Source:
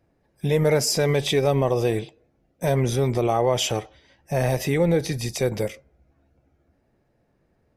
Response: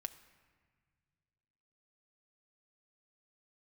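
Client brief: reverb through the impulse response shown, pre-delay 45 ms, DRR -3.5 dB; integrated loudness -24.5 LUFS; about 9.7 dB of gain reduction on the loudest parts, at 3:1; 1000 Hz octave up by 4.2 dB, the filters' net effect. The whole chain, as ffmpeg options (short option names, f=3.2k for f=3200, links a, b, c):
-filter_complex "[0:a]equalizer=f=1k:t=o:g=6,acompressor=threshold=-28dB:ratio=3,asplit=2[a][b];[1:a]atrim=start_sample=2205,adelay=45[c];[b][c]afir=irnorm=-1:irlink=0,volume=6.5dB[d];[a][d]amix=inputs=2:normalize=0,volume=1dB"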